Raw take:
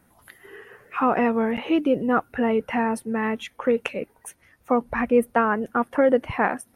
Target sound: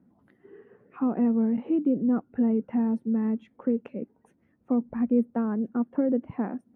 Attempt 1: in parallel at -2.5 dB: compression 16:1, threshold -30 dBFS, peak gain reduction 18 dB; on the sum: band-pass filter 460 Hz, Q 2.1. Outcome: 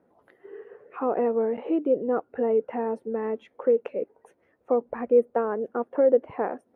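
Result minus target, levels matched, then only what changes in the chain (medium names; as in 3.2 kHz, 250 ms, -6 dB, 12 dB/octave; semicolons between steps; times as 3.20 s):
500 Hz band +9.5 dB
change: band-pass filter 230 Hz, Q 2.1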